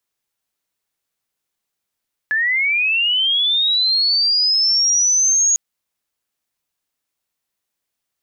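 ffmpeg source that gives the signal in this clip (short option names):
-f lavfi -i "aevalsrc='pow(10,(-15+3*t/3.25)/20)*sin(2*PI*(1700*t+5000*t*t/(2*3.25)))':d=3.25:s=44100"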